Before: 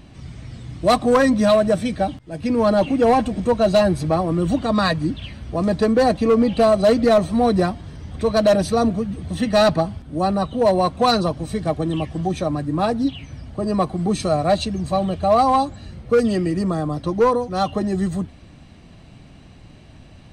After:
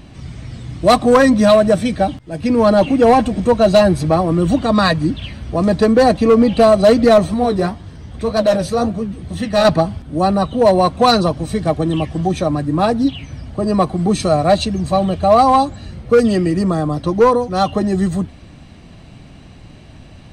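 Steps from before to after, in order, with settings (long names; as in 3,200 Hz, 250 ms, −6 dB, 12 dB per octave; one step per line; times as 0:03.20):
0:07.34–0:09.65: flanger 1.9 Hz, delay 9.2 ms, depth 9.8 ms, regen +52%
level +5 dB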